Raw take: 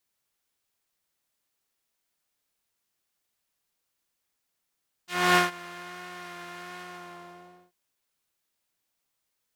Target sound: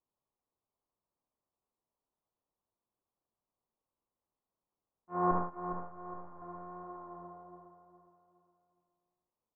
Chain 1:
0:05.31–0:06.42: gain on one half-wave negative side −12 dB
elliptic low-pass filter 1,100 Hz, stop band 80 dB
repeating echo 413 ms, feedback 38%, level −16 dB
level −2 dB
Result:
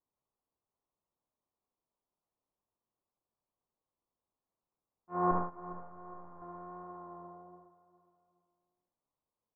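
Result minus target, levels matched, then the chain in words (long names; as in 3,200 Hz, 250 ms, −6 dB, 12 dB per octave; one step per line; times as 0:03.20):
echo-to-direct −6.5 dB
0:05.31–0:06.42: gain on one half-wave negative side −12 dB
elliptic low-pass filter 1,100 Hz, stop band 80 dB
repeating echo 413 ms, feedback 38%, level −9.5 dB
level −2 dB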